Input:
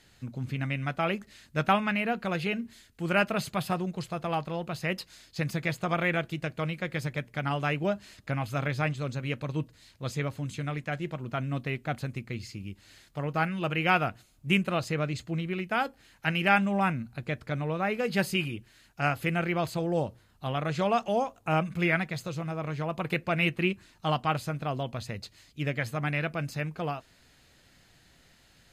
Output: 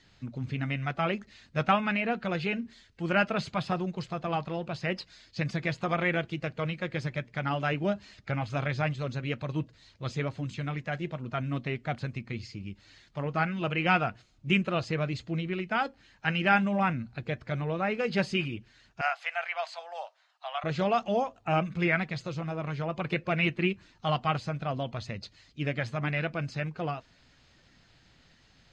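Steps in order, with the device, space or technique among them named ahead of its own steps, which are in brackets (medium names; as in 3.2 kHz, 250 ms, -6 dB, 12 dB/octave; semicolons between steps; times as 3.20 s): clip after many re-uploads (low-pass 6.1 kHz 24 dB/octave; coarse spectral quantiser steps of 15 dB); 19.01–20.64 s: elliptic high-pass 680 Hz, stop band 60 dB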